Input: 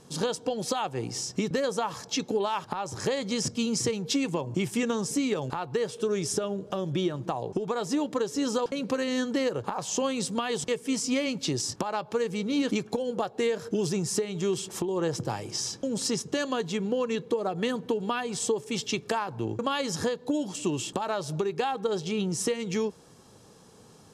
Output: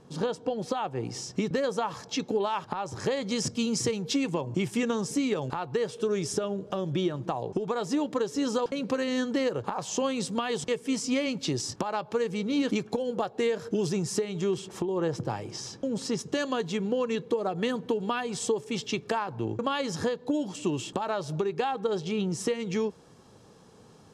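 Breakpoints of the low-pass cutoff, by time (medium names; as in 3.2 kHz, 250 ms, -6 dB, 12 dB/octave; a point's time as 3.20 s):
low-pass 6 dB/octave
1.8 kHz
from 1.05 s 4 kHz
from 3.29 s 10 kHz
from 4.10 s 5.9 kHz
from 14.44 s 2.6 kHz
from 16.19 s 6.8 kHz
from 18.67 s 4.1 kHz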